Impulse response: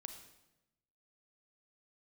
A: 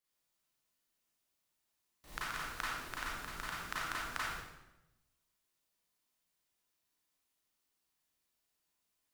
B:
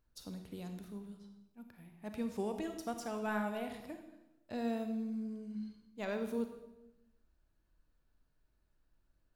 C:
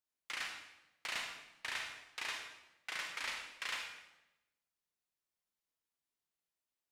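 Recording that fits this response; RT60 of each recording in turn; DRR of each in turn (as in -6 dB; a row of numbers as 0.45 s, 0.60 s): B; 0.95 s, 0.95 s, 0.95 s; -7.5 dB, 6.0 dB, 1.5 dB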